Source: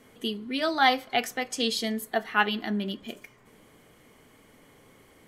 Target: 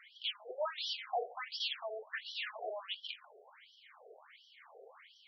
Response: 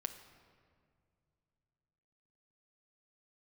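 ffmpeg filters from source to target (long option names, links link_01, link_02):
-af "aeval=exprs='(tanh(70.8*val(0)+0.45)-tanh(0.45))/70.8':channel_layout=same,afftfilt=real='re*between(b*sr/1024,520*pow(4200/520,0.5+0.5*sin(2*PI*1.4*pts/sr))/1.41,520*pow(4200/520,0.5+0.5*sin(2*PI*1.4*pts/sr))*1.41)':imag='im*between(b*sr/1024,520*pow(4200/520,0.5+0.5*sin(2*PI*1.4*pts/sr))/1.41,520*pow(4200/520,0.5+0.5*sin(2*PI*1.4*pts/sr))*1.41)':win_size=1024:overlap=0.75,volume=8dB"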